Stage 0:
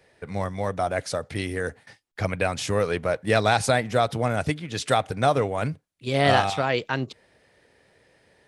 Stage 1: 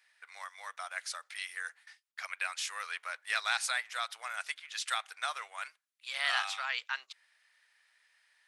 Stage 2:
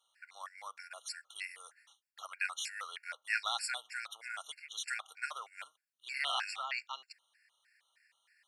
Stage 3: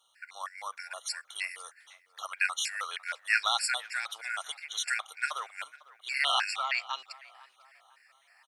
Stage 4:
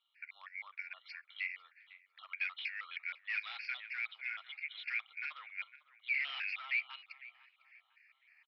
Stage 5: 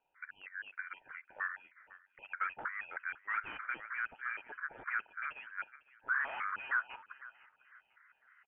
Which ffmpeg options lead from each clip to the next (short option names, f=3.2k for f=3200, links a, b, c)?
-af "highpass=f=1.2k:w=0.5412,highpass=f=1.2k:w=1.3066,volume=-5dB"
-af "afftfilt=real='re*gt(sin(2*PI*3.2*pts/sr)*(1-2*mod(floor(b*sr/1024/1400),2)),0)':imag='im*gt(sin(2*PI*3.2*pts/sr)*(1-2*mod(floor(b*sr/1024/1400),2)),0)':win_size=1024:overlap=0.75"
-filter_complex "[0:a]asplit=2[a][b];[b]adelay=501,lowpass=f=1.8k:p=1,volume=-18.5dB,asplit=2[c][d];[d]adelay=501,lowpass=f=1.8k:p=1,volume=0.5,asplit=2[e][f];[f]adelay=501,lowpass=f=1.8k:p=1,volume=0.5,asplit=2[g][h];[h]adelay=501,lowpass=f=1.8k:p=1,volume=0.5[i];[a][c][e][g][i]amix=inputs=5:normalize=0,volume=7.5dB"
-af "aresample=11025,volume=30dB,asoftclip=hard,volume=-30dB,aresample=44100,bandpass=f=2.3k:t=q:w=7:csg=0,volume=4.5dB"
-af "lowpass=f=3.2k:t=q:w=0.5098,lowpass=f=3.2k:t=q:w=0.6013,lowpass=f=3.2k:t=q:w=0.9,lowpass=f=3.2k:t=q:w=2.563,afreqshift=-3800,volume=1.5dB"